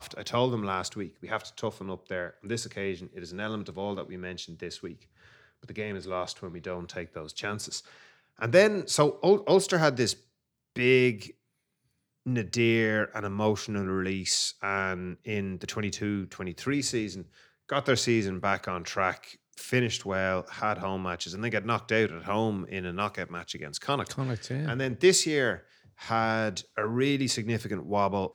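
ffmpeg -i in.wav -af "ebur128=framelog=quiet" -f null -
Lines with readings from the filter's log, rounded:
Integrated loudness:
  I:         -28.9 LUFS
  Threshold: -39.4 LUFS
Loudness range:
  LRA:        11.3 LU
  Threshold: -49.4 LUFS
  LRA low:   -37.1 LUFS
  LRA high:  -25.8 LUFS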